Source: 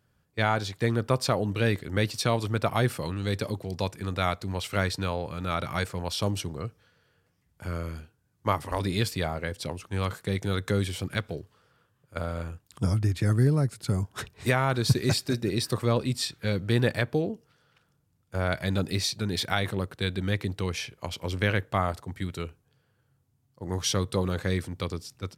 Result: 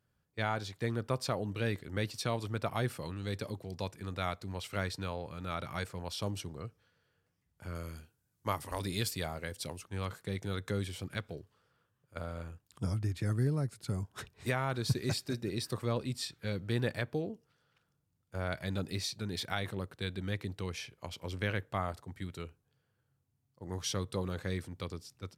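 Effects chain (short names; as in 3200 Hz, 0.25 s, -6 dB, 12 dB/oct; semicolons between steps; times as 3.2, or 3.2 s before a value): 7.75–9.84 high shelf 5000 Hz +10.5 dB; gain -8.5 dB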